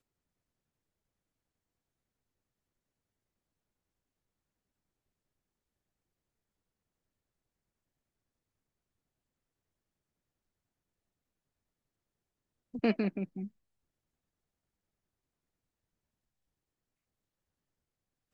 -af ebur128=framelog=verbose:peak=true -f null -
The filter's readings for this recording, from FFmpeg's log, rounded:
Integrated loudness:
  I:         -33.9 LUFS
  Threshold: -44.7 LUFS
Loudness range:
  LRA:        10.2 LU
  Threshold: -60.0 LUFS
  LRA low:   -49.3 LUFS
  LRA high:  -39.1 LUFS
True peak:
  Peak:      -17.6 dBFS